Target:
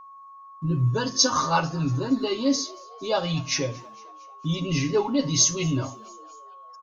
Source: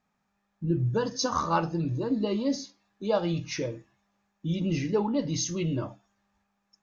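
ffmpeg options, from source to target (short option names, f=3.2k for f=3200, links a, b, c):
-filter_complex "[0:a]agate=range=-10dB:threshold=-59dB:ratio=16:detection=peak,highshelf=f=2.7k:g=10.5,aecho=1:1:7.4:0.9,aeval=exprs='val(0)+0.00708*sin(2*PI*1100*n/s)':c=same,asplit=5[a][b][c][d][e];[b]adelay=228,afreqshift=94,volume=-24dB[f];[c]adelay=456,afreqshift=188,volume=-28.3dB[g];[d]adelay=684,afreqshift=282,volume=-32.6dB[h];[e]adelay=912,afreqshift=376,volume=-36.9dB[i];[a][f][g][h][i]amix=inputs=5:normalize=0"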